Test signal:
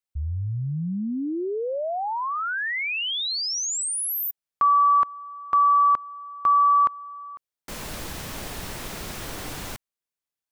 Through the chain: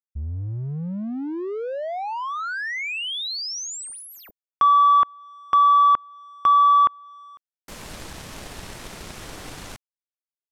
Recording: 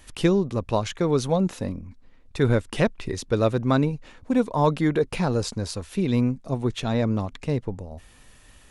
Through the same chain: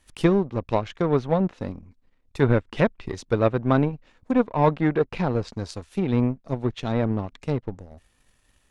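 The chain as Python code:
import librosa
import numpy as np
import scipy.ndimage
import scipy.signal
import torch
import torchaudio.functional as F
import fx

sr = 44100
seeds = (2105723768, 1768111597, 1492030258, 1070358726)

y = fx.power_curve(x, sr, exponent=1.4)
y = fx.env_lowpass_down(y, sr, base_hz=2500.0, full_db=-23.5)
y = y * 10.0 ** (3.5 / 20.0)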